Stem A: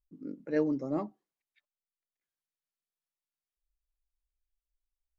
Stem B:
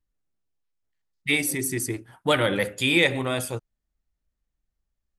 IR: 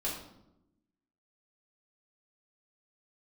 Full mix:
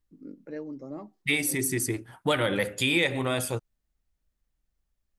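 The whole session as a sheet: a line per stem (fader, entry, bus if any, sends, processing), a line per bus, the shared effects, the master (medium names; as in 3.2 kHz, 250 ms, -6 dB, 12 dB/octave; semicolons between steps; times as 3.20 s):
-2.0 dB, 0.00 s, no send, compression 3:1, threshold -34 dBFS, peak gain reduction 8.5 dB
+1.5 dB, 0.00 s, no send, none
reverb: none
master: compression 2:1, threshold -25 dBFS, peak gain reduction 7 dB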